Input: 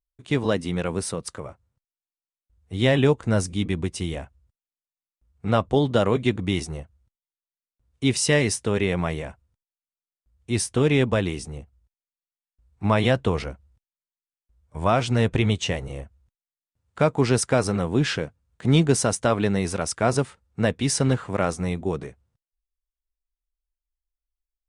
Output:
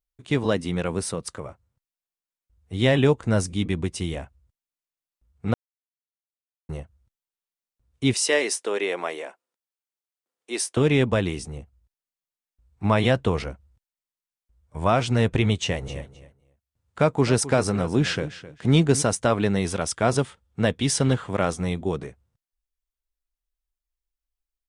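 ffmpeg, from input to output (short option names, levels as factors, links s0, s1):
-filter_complex "[0:a]asettb=1/sr,asplit=3[s0][s1][s2];[s0]atrim=end=8.144[s3];[s1]atrim=start=8.14:end=10.77,asetpts=PTS-STARTPTS,afade=t=in:d=0.004:c=qsin,afade=t=out:st=2.626:d=0.004:c=qsin,highpass=f=340:w=0.5412,highpass=f=340:w=1.3066[s4];[s2]atrim=start=10.766[s5];[s3][s4]acrossfade=d=0.004:c1=hsin:c2=qsin[s6];[s6][s5]acrossfade=d=0.004:c1=qsin:c2=hsin,asplit=3[s7][s8][s9];[s7]afade=t=out:st=15.82:d=0.02[s10];[s8]aecho=1:1:261|522:0.178|0.0302,afade=t=in:st=15.82:d=0.02,afade=t=out:st=19.01:d=0.02[s11];[s9]afade=t=in:st=19.01:d=0.02[s12];[s10][s11][s12]amix=inputs=3:normalize=0,asettb=1/sr,asplit=3[s13][s14][s15];[s13]atrim=end=19.564[s16];[s14]atrim=start=19.56:end=21.97,asetpts=PTS-STARTPTS,afade=t=in:d=0.004:c=qsin,afade=t=out:st=2.406:d=0.004:c=qsin,equalizer=f=3300:w=6.9:g=8.5[s17];[s15]atrim=start=21.966[s18];[s16][s17]acrossfade=d=0.004:c1=hsin:c2=qsin[s19];[s19][s18]acrossfade=d=0.004:c1=qsin:c2=hsin,asplit=3[s20][s21][s22];[s20]atrim=end=5.54,asetpts=PTS-STARTPTS,afade=t=out:st=5.536:d=0.004:c=hsin[s23];[s21]atrim=start=5.54:end=6.69,asetpts=PTS-STARTPTS,volume=0[s24];[s22]atrim=start=6.69,asetpts=PTS-STARTPTS,afade=t=in:d=0.004:c=hsin[s25];[s23][s24][s25]concat=n=3:v=0:a=1"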